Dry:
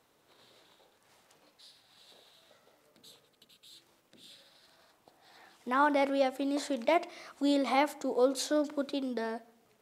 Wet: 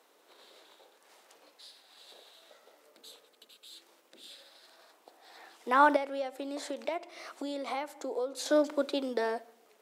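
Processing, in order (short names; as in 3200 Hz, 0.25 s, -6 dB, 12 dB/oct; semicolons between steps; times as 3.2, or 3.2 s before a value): 5.96–8.46 compressor 6:1, threshold -37 dBFS, peak gain reduction 15 dB; ladder high-pass 270 Hz, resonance 20%; gain +9 dB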